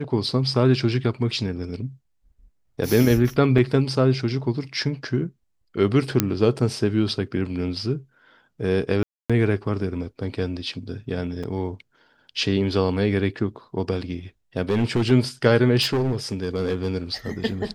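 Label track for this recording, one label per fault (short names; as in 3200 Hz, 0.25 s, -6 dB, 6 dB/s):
3.580000	3.580000	gap 4.4 ms
6.200000	6.200000	pop -2 dBFS
9.030000	9.300000	gap 0.266 s
11.430000	11.440000	gap 5.5 ms
14.690000	15.120000	clipped -16.5 dBFS
15.810000	16.950000	clipped -18.5 dBFS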